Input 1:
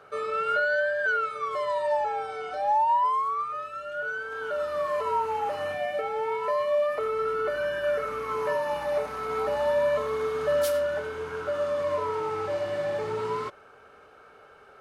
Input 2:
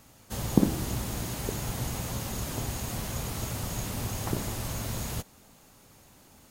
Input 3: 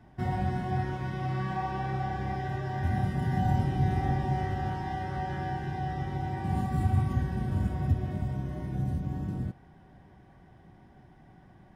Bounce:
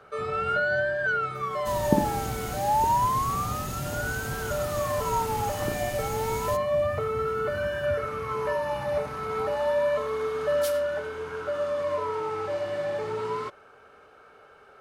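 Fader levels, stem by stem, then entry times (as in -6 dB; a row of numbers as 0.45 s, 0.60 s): -0.5 dB, -1.5 dB, -11.0 dB; 0.00 s, 1.35 s, 0.00 s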